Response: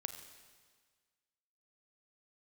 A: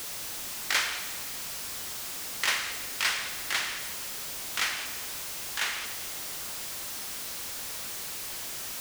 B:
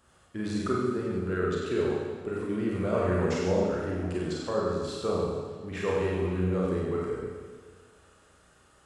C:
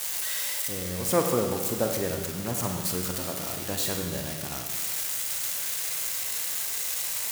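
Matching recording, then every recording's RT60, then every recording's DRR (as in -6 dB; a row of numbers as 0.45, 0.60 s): A; 1.6, 1.6, 1.6 s; 7.5, -5.0, 2.5 dB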